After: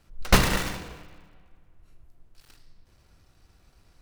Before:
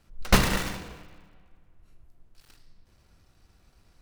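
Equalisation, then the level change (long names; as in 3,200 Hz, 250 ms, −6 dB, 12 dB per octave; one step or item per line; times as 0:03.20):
parametric band 210 Hz −4 dB 0.21 octaves
+1.5 dB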